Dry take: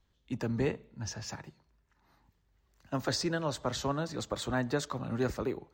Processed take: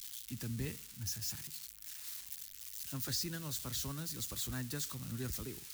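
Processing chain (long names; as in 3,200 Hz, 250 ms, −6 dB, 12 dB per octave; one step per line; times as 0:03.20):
spike at every zero crossing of −28 dBFS
guitar amp tone stack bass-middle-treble 6-0-2
level +9.5 dB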